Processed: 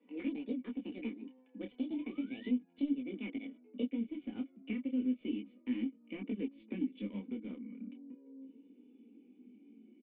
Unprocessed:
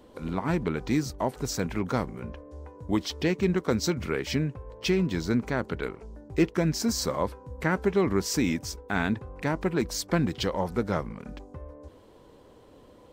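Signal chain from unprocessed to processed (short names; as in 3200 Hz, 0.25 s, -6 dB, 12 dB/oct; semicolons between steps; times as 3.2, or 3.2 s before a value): speed glide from 191% -> 71%; steep high-pass 200 Hz 72 dB/oct; bell 700 Hz -8 dB 0.25 oct; notch 3200 Hz, Q 8.6; comb 4.1 ms, depth 46%; painted sound rise, 1.9–2.49, 830–2100 Hz -31 dBFS; in parallel at -9 dB: bit-crush 4-bit; on the sum: vocal tract filter i; compressor 2.5:1, threshold -38 dBFS, peak gain reduction 12.5 dB; detuned doubles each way 11 cents; gain +4.5 dB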